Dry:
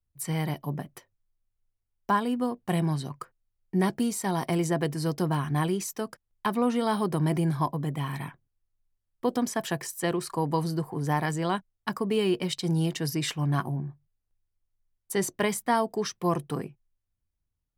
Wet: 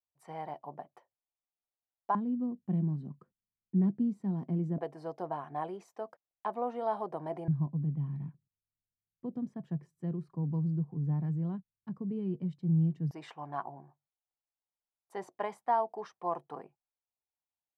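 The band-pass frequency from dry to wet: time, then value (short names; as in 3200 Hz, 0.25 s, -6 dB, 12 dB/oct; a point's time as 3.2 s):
band-pass, Q 2.8
760 Hz
from 2.15 s 200 Hz
from 4.78 s 700 Hz
from 7.48 s 160 Hz
from 13.11 s 800 Hz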